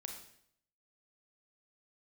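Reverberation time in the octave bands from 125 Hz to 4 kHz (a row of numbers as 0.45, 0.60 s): 0.75, 0.70, 0.70, 0.65, 0.65, 0.65 s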